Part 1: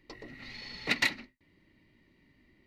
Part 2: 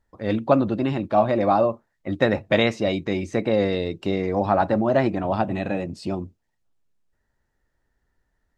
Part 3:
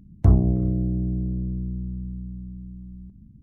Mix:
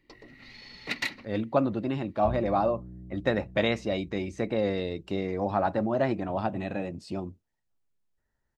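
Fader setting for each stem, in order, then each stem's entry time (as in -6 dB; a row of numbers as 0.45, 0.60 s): -3.5, -6.5, -19.5 dB; 0.00, 1.05, 2.00 s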